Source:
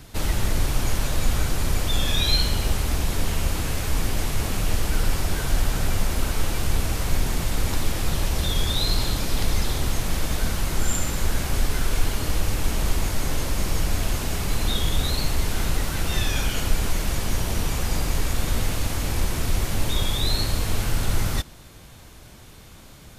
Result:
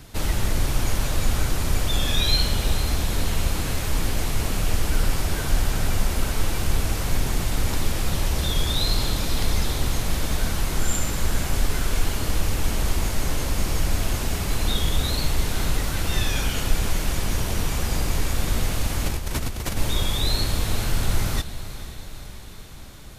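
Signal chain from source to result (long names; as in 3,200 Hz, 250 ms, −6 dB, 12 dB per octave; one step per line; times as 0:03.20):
0:19.06–0:19.77: compressor whose output falls as the input rises −27 dBFS, ratio −1
on a send: feedback delay with all-pass diffusion 474 ms, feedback 62%, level −13.5 dB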